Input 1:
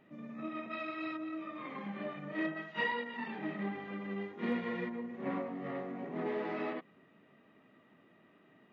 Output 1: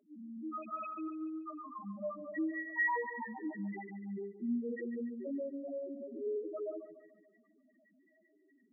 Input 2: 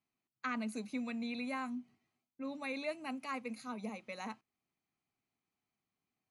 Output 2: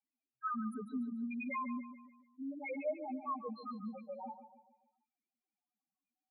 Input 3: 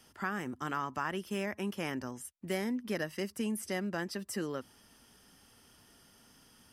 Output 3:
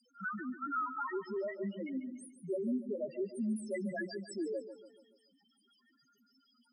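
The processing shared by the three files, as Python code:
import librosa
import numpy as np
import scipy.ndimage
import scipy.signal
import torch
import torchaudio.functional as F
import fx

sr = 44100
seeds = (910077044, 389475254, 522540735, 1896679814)

p1 = fx.highpass(x, sr, hz=380.0, slope=6)
p2 = fx.spec_topn(p1, sr, count=1)
p3 = p2 + fx.echo_feedback(p2, sr, ms=144, feedback_pct=45, wet_db=-11.5, dry=0)
y = p3 * librosa.db_to_amplitude(10.5)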